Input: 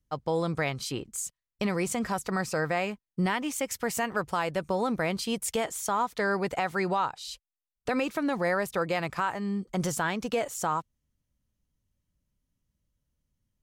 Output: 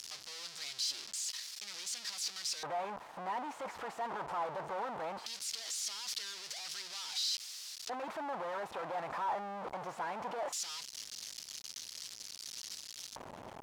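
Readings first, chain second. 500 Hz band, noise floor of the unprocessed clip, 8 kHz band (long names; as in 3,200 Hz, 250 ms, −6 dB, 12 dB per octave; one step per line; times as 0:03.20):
−13.0 dB, below −85 dBFS, −3.0 dB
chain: sign of each sample alone
auto-filter band-pass square 0.19 Hz 860–4,900 Hz
level +1 dB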